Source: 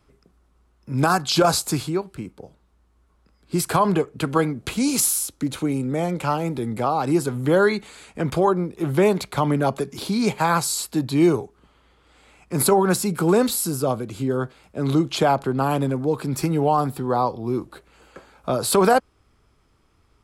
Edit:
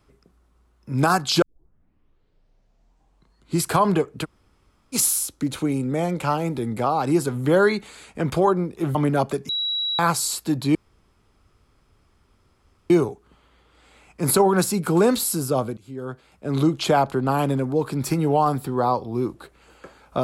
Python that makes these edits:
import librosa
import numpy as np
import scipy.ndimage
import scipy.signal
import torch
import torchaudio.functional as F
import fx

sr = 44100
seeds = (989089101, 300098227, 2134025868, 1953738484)

y = fx.edit(x, sr, fx.tape_start(start_s=1.42, length_s=2.23),
    fx.room_tone_fill(start_s=4.24, length_s=0.7, crossfade_s=0.04),
    fx.cut(start_s=8.95, length_s=0.47),
    fx.bleep(start_s=9.96, length_s=0.5, hz=3890.0, db=-22.0),
    fx.insert_room_tone(at_s=11.22, length_s=2.15),
    fx.fade_in_from(start_s=14.09, length_s=0.85, floor_db=-21.5), tone=tone)